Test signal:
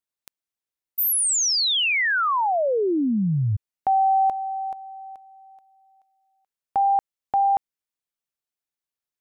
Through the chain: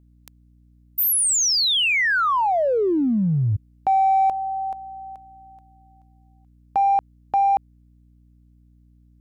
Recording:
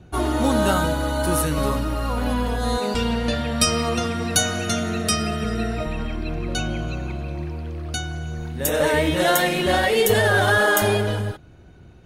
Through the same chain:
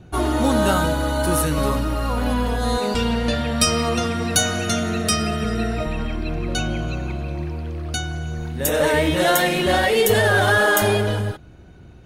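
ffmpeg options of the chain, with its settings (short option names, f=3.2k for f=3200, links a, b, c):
-filter_complex "[0:a]asplit=2[a][b];[b]asoftclip=type=hard:threshold=-21dB,volume=-11.5dB[c];[a][c]amix=inputs=2:normalize=0,aeval=exprs='val(0)+0.00224*(sin(2*PI*60*n/s)+sin(2*PI*2*60*n/s)/2+sin(2*PI*3*60*n/s)/3+sin(2*PI*4*60*n/s)/4+sin(2*PI*5*60*n/s)/5)':c=same"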